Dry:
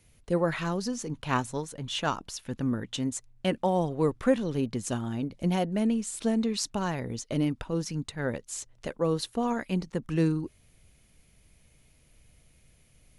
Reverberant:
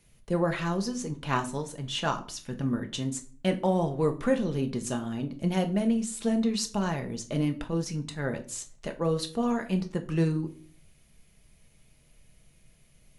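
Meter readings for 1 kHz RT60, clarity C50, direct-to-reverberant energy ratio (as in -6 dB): 0.40 s, 14.5 dB, 5.0 dB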